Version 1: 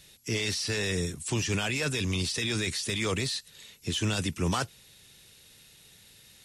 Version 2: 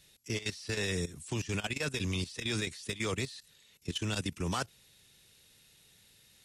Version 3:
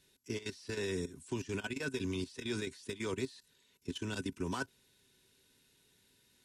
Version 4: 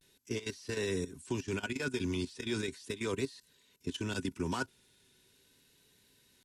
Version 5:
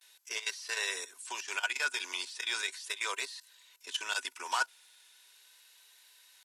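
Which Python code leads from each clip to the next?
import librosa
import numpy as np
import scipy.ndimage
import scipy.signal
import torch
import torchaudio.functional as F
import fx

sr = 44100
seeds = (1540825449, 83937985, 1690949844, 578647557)

y1 = fx.level_steps(x, sr, step_db=15)
y1 = F.gain(torch.from_numpy(y1), -2.5).numpy()
y2 = fx.small_body(y1, sr, hz=(270.0, 380.0, 970.0, 1500.0), ring_ms=55, db=12)
y2 = F.gain(torch.from_numpy(y2), -8.0).numpy()
y3 = fx.vibrato(y2, sr, rate_hz=0.38, depth_cents=48.0)
y3 = F.gain(torch.from_numpy(y3), 2.5).numpy()
y4 = scipy.signal.sosfilt(scipy.signal.butter(4, 760.0, 'highpass', fs=sr, output='sos'), y3)
y4 = F.gain(torch.from_numpy(y4), 7.5).numpy()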